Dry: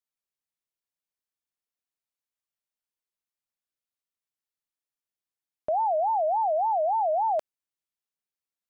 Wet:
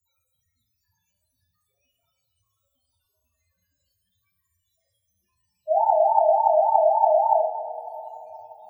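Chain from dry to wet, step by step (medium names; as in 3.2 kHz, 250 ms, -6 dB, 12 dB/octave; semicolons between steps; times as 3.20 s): high-pass 56 Hz 24 dB/octave; hum notches 60/120/180/240/300/360/420/480 Hz; power-law waveshaper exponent 0.5; loudest bins only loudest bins 2; two-slope reverb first 0.48 s, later 4.3 s, from -18 dB, DRR -5.5 dB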